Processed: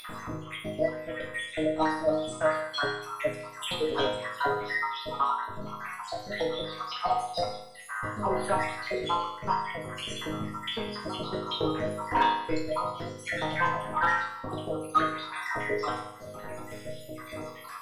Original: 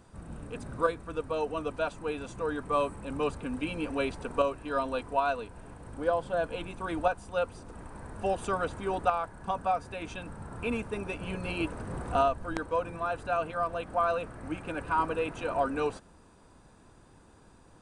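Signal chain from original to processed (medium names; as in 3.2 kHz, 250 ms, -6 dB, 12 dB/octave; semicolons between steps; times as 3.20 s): random holes in the spectrogram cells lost 67%; bass shelf 160 Hz -5 dB; upward compressor, threshold -35 dBFS; formant shift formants +5 st; sine folder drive 16 dB, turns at -3.5 dBFS; chord resonator G#2 minor, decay 0.81 s; slew-rate limiter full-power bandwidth 86 Hz; trim +7.5 dB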